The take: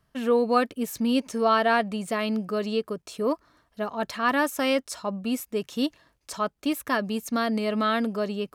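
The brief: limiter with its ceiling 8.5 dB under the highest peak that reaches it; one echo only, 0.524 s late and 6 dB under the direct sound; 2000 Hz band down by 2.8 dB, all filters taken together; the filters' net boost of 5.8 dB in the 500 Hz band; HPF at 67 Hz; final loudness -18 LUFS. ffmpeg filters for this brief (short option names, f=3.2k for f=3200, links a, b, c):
-af "highpass=67,equalizer=f=500:t=o:g=7,equalizer=f=2k:t=o:g=-4,alimiter=limit=-15.5dB:level=0:latency=1,aecho=1:1:524:0.501,volume=7.5dB"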